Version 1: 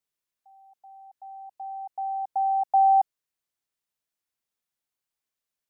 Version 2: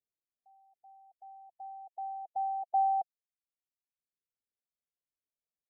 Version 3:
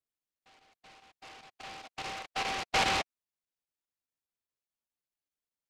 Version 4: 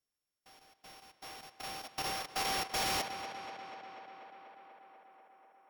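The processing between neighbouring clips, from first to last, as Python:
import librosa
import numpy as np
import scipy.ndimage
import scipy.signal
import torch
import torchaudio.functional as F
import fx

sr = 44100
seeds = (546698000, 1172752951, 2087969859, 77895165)

y1 = fx.dereverb_blind(x, sr, rt60_s=1.6)
y1 = scipy.signal.sosfilt(scipy.signal.cheby1(5, 1.0, 750.0, 'lowpass', fs=sr, output='sos'), y1)
y1 = y1 * librosa.db_to_amplitude(-4.0)
y2 = fx.chopper(y1, sr, hz=4.9, depth_pct=60, duty_pct=90)
y2 = fx.noise_mod_delay(y2, sr, seeds[0], noise_hz=1600.0, depth_ms=0.23)
y3 = np.r_[np.sort(y2[:len(y2) // 8 * 8].reshape(-1, 8), axis=1).ravel(), y2[len(y2) // 8 * 8:]]
y3 = fx.echo_tape(y3, sr, ms=244, feedback_pct=83, wet_db=-15, lp_hz=4100.0, drive_db=19.0, wow_cents=13)
y3 = np.clip(10.0 ** (34.5 / 20.0) * y3, -1.0, 1.0) / 10.0 ** (34.5 / 20.0)
y3 = y3 * librosa.db_to_amplitude(2.5)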